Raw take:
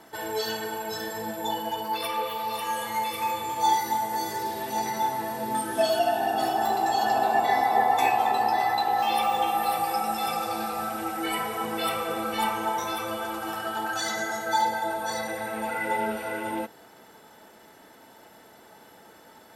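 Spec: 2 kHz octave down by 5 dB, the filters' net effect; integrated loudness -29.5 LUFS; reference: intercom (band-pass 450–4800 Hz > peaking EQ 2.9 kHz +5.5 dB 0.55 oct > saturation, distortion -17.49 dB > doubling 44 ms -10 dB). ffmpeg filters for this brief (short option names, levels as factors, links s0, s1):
-filter_complex "[0:a]highpass=450,lowpass=4800,equalizer=f=2000:t=o:g=-8,equalizer=f=2900:t=o:w=0.55:g=5.5,asoftclip=threshold=0.106,asplit=2[s0][s1];[s1]adelay=44,volume=0.316[s2];[s0][s2]amix=inputs=2:normalize=0,volume=1.06"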